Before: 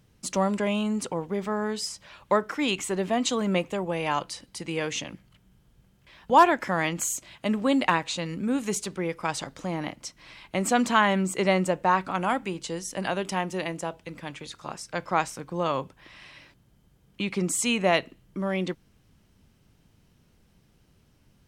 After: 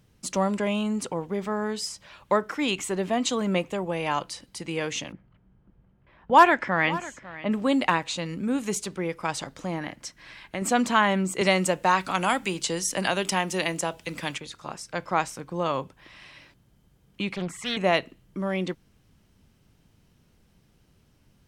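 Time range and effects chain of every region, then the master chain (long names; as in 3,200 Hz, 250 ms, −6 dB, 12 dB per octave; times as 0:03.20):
0:05.12–0:07.52: low-pass that shuts in the quiet parts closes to 1,400 Hz, open at −13.5 dBFS + dynamic equaliser 1,900 Hz, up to +6 dB, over −33 dBFS, Q 1.1 + single-tap delay 549 ms −17 dB
0:09.78–0:10.62: parametric band 1,700 Hz +9.5 dB 0.3 octaves + downward compressor 2 to 1, threshold −30 dBFS
0:11.41–0:14.38: high-shelf EQ 2,200 Hz +10 dB + multiband upward and downward compressor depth 40%
0:17.36–0:17.77: drawn EQ curve 170 Hz 0 dB, 290 Hz −11 dB, 1,900 Hz +8 dB, 3,300 Hz −8 dB, 8,700 Hz −15 dB + highs frequency-modulated by the lows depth 0.72 ms
whole clip: no processing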